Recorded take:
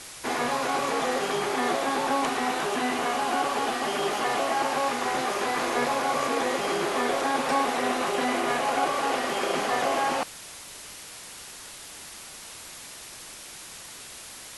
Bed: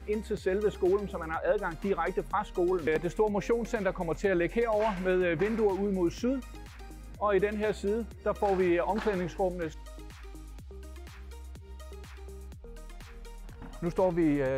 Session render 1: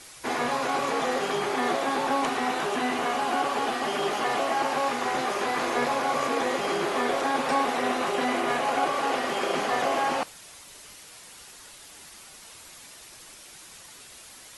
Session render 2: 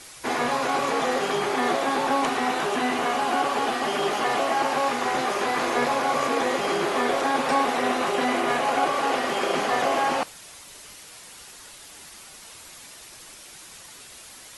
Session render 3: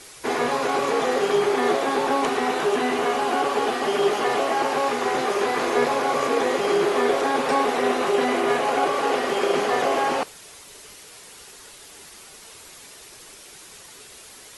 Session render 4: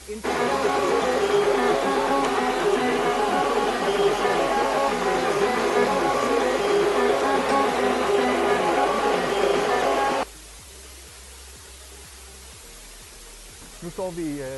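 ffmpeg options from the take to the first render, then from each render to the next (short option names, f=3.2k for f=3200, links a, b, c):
-af "afftdn=nr=6:nf=-43"
-af "volume=2.5dB"
-af "equalizer=f=420:w=3.9:g=8.5"
-filter_complex "[1:a]volume=-3dB[a];[0:a][a]amix=inputs=2:normalize=0"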